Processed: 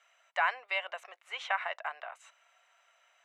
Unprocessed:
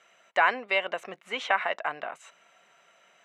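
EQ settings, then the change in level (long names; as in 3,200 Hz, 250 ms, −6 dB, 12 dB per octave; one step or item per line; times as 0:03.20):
high-pass filter 650 Hz 24 dB per octave
−6.0 dB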